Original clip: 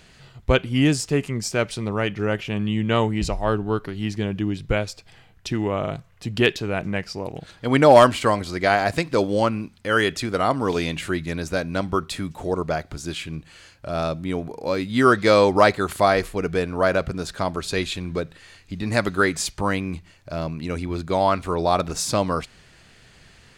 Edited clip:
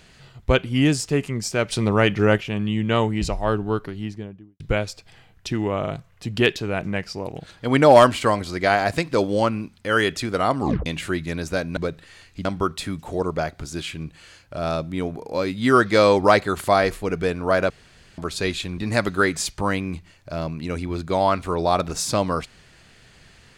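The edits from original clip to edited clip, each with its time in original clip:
1.72–2.38 gain +6 dB
3.71–4.6 studio fade out
10.6 tape stop 0.26 s
17.02–17.5 room tone
18.1–18.78 move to 11.77

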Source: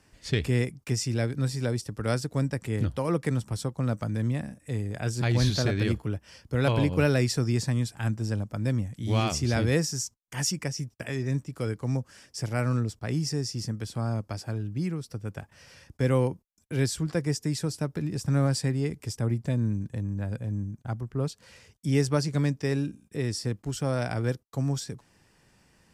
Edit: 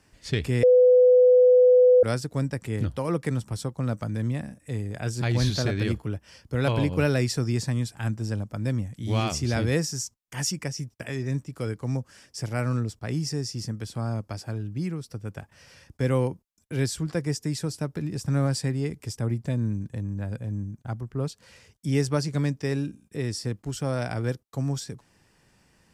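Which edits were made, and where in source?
0.63–2.03 bleep 500 Hz -12.5 dBFS

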